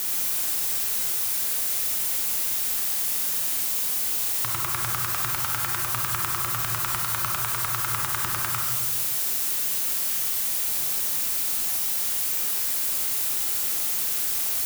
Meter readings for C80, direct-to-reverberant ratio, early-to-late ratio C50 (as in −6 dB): 4.0 dB, −0.5 dB, 1.5 dB